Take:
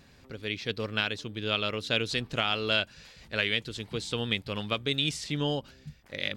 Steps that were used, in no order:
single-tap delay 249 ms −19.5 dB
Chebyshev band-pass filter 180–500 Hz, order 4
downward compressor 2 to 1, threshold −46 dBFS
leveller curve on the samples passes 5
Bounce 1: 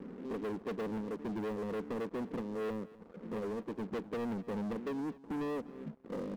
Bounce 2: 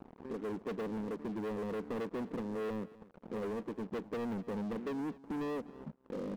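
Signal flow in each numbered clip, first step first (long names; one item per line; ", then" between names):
downward compressor, then Chebyshev band-pass filter, then leveller curve on the samples, then single-tap delay
Chebyshev band-pass filter, then leveller curve on the samples, then downward compressor, then single-tap delay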